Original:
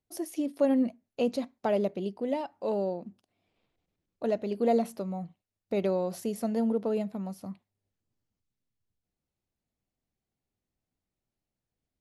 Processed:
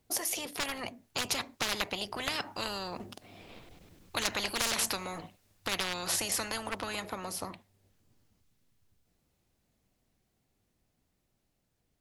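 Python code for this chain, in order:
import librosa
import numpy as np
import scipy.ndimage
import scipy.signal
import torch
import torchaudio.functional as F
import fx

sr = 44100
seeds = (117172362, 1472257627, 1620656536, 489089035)

y = np.minimum(x, 2.0 * 10.0 ** (-20.5 / 20.0) - x)
y = fx.doppler_pass(y, sr, speed_mps=8, closest_m=9.5, pass_at_s=3.99)
y = fx.spectral_comp(y, sr, ratio=10.0)
y = F.gain(torch.from_numpy(y), 7.5).numpy()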